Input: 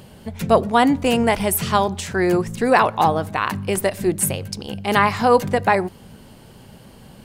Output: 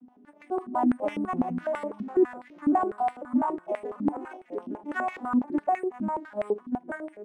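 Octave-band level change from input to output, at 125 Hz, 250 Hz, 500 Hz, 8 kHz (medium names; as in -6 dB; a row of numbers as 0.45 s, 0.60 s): -18.0 dB, -5.0 dB, -10.5 dB, under -30 dB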